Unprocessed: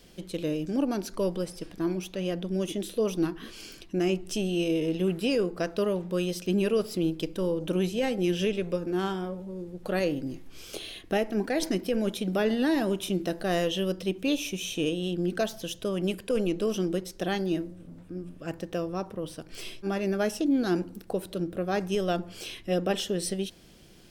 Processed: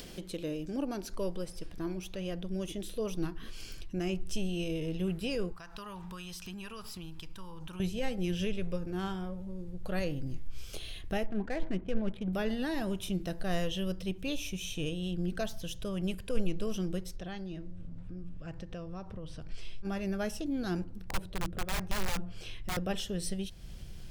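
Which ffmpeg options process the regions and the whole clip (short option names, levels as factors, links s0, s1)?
-filter_complex "[0:a]asettb=1/sr,asplit=3[s0][s1][s2];[s0]atrim=end=5.524[s3];[s1]atrim=start=5.52:end=7.8,asetpts=PTS-STARTPTS,afade=t=in:d=0.004:c=qsin,afade=t=out:st=2.276:d=0.004:c=qsin,lowshelf=f=720:t=q:w=3:g=-8.5,bandreject=f=2100:w=19,acompressor=threshold=0.00631:ratio=2.5:attack=3.2:release=140:knee=1:detection=peak[s4];[s2]atrim=start=7.796[s5];[s3][s4]acrossfade=d=0.004:c1=hsin:c2=qsin[s6];[s6][s5]acrossfade=d=0.004:c1=qsin:c2=hsin,asettb=1/sr,asplit=3[s7][s8][s9];[s7]atrim=end=11.264[s10];[s8]atrim=start=11.26:end=12.33,asetpts=PTS-STARTPTS,afade=t=in:d=0.004:c=qsin,afade=t=out:st=1.066:d=0.004:c=qsin,lowpass=f=3200:w=0.5412,lowpass=f=3200:w=1.3066,adynamicsmooth=sensitivity=7:basefreq=1100[s11];[s9]atrim=start=12.326[s12];[s10][s11]acrossfade=d=0.004:c1=hsin:c2=qsin[s13];[s13][s12]acrossfade=d=0.004:c1=qsin:c2=hsin,asettb=1/sr,asplit=3[s14][s15][s16];[s14]atrim=end=17.164[s17];[s15]atrim=start=17.16:end=19.85,asetpts=PTS-STARTPTS,afade=t=in:d=0.004:c=qsin,afade=t=out:st=2.686:d=0.004:c=qsin,lowpass=5800,acompressor=threshold=0.00562:ratio=1.5:attack=3.2:release=140:knee=1:detection=peak[s18];[s16]atrim=start=19.846[s19];[s17][s18]acrossfade=d=0.004:c1=hsin:c2=qsin[s20];[s20][s19]acrossfade=d=0.004:c1=qsin:c2=hsin,asettb=1/sr,asplit=3[s21][s22][s23];[s21]atrim=end=20.844[s24];[s22]atrim=start=20.84:end=22.77,asetpts=PTS-STARTPTS,afade=t=in:d=0.004:c=qsin,afade=t=out:st=1.926:d=0.004:c=qsin,aemphasis=mode=reproduction:type=50kf,bandreject=f=60:t=h:w=6,bandreject=f=120:t=h:w=6,bandreject=f=180:t=h:w=6,aeval=exprs='(mod(15.8*val(0)+1,2)-1)/15.8':c=same[s25];[s23]atrim=start=22.766[s26];[s24][s25]acrossfade=d=0.004:c1=hsin:c2=qsin[s27];[s27][s26]acrossfade=d=0.004:c1=qsin:c2=hsin,asubboost=boost=8.5:cutoff=100,acompressor=mode=upward:threshold=0.0355:ratio=2.5,volume=0.501"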